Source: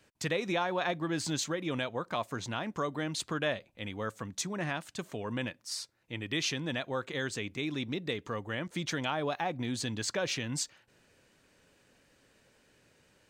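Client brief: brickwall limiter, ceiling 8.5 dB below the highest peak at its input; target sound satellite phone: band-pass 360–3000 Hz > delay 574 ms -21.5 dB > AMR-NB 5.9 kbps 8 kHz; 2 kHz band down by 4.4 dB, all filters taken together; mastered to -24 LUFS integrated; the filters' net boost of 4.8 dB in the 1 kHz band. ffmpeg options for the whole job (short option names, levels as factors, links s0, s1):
-af "equalizer=f=1000:t=o:g=8.5,equalizer=f=2000:t=o:g=-8,alimiter=limit=0.0631:level=0:latency=1,highpass=360,lowpass=3000,aecho=1:1:574:0.0841,volume=6.31" -ar 8000 -c:a libopencore_amrnb -b:a 5900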